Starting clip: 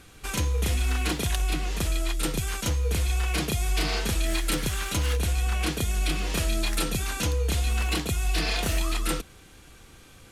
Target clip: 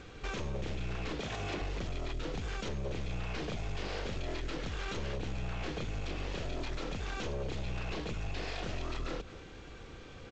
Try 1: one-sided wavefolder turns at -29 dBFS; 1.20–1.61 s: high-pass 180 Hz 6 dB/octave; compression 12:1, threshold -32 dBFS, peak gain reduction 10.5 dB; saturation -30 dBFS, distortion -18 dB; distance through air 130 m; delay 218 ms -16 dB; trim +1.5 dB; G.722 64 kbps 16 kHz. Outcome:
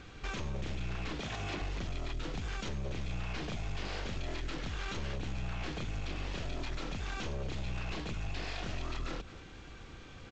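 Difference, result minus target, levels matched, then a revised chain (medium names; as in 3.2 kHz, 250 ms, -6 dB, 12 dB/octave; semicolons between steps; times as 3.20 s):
500 Hz band -3.5 dB
one-sided wavefolder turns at -29 dBFS; 1.20–1.61 s: high-pass 180 Hz 6 dB/octave; compression 12:1, threshold -32 dBFS, peak gain reduction 10.5 dB; peaking EQ 470 Hz +6 dB 0.77 oct; saturation -30 dBFS, distortion -16 dB; distance through air 130 m; delay 218 ms -16 dB; trim +1.5 dB; G.722 64 kbps 16 kHz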